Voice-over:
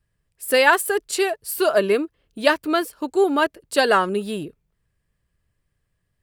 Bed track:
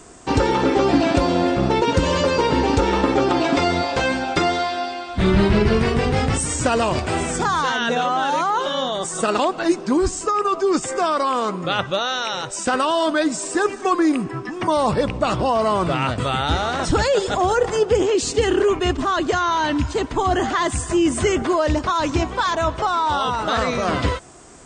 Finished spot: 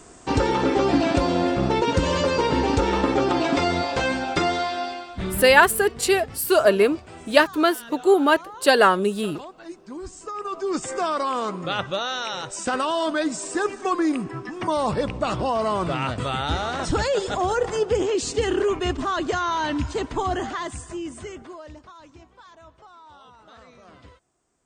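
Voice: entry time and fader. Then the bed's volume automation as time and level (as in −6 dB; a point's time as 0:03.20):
4.90 s, +1.5 dB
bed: 0:04.92 −3 dB
0:05.62 −20 dB
0:09.80 −20 dB
0:10.88 −4.5 dB
0:20.19 −4.5 dB
0:22.14 −28 dB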